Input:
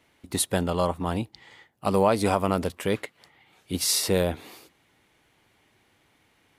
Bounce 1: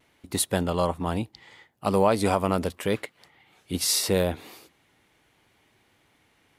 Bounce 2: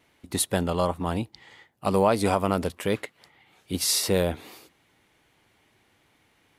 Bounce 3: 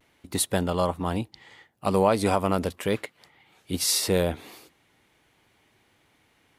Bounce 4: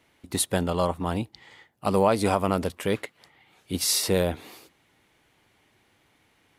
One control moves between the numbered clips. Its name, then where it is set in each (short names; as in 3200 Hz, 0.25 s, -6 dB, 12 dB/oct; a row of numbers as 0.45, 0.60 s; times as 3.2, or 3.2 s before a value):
vibrato, rate: 0.75, 2.5, 0.4, 14 Hz